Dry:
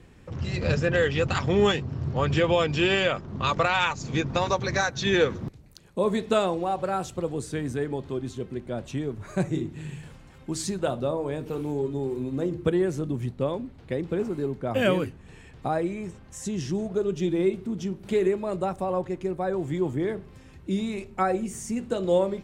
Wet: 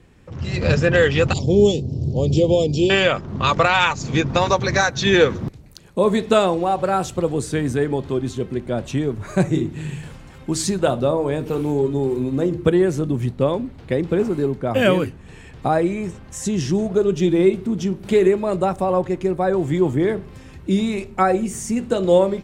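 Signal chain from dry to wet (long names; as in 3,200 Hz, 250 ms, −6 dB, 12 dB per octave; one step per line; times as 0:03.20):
0:01.33–0:02.90: Chebyshev band-stop filter 480–4,700 Hz, order 2
automatic gain control gain up to 8.5 dB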